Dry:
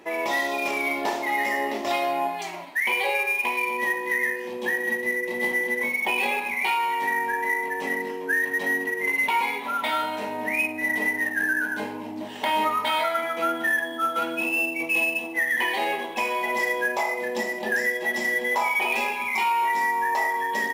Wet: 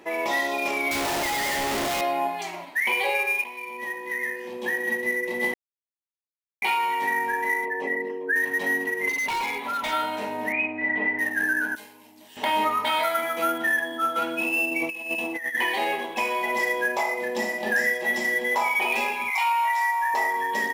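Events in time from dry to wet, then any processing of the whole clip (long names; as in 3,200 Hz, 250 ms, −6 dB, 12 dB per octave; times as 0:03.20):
0:00.91–0:02.01: sign of each sample alone
0:03.44–0:05.00: fade in, from −13.5 dB
0:05.54–0:06.62: silence
0:07.65–0:08.36: spectral envelope exaggerated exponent 1.5
0:09.09–0:09.93: hard clipping −24.5 dBFS
0:10.52–0:11.19: low-pass filter 2,800 Hz 24 dB per octave
0:11.75–0:12.37: first-order pre-emphasis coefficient 0.9
0:13.03–0:13.58: high-shelf EQ 8,200 Hz +11 dB
0:14.71–0:15.55: compressor whose output falls as the input rises −28 dBFS, ratio −0.5
0:17.38–0:18.15: double-tracking delay 42 ms −5.5 dB
0:19.30–0:20.14: linear-phase brick-wall high-pass 600 Hz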